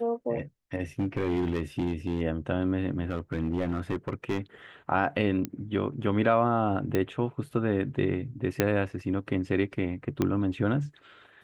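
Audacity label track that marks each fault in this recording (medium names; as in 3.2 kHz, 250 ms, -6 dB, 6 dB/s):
0.990000	2.220000	clipped -23 dBFS
3.100000	4.390000	clipped -23 dBFS
5.450000	5.450000	pop -16 dBFS
6.950000	6.950000	pop -14 dBFS
8.600000	8.600000	pop -8 dBFS
10.220000	10.220000	pop -13 dBFS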